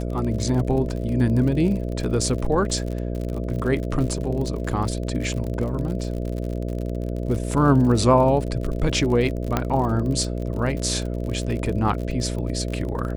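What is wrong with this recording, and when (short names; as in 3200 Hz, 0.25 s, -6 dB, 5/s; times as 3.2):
buzz 60 Hz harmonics 11 -27 dBFS
crackle 54/s -29 dBFS
9.57 pop -7 dBFS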